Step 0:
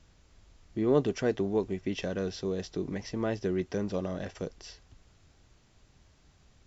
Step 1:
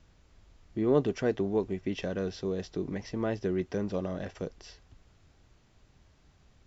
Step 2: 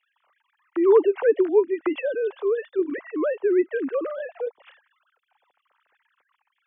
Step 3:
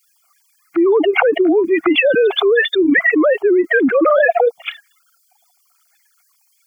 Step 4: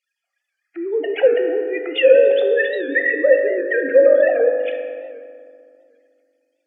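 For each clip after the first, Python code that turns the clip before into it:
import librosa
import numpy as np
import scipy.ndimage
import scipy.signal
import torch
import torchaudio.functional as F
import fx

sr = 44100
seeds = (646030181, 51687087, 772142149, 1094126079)

y1 = fx.high_shelf(x, sr, hz=5000.0, db=-7.0)
y2 = fx.sine_speech(y1, sr)
y2 = fx.bell_lfo(y2, sr, hz=0.92, low_hz=810.0, high_hz=1700.0, db=9)
y2 = y2 * 10.0 ** (8.0 / 20.0)
y3 = fx.bin_expand(y2, sr, power=2.0)
y3 = fx.env_flatten(y3, sr, amount_pct=100)
y3 = y3 * 10.0 ** (2.0 / 20.0)
y4 = fx.vowel_filter(y3, sr, vowel='e')
y4 = fx.rev_fdn(y4, sr, rt60_s=2.3, lf_ratio=1.4, hf_ratio=0.55, size_ms=11.0, drr_db=2.5)
y4 = fx.record_warp(y4, sr, rpm=78.0, depth_cents=100.0)
y4 = y4 * 10.0 ** (2.0 / 20.0)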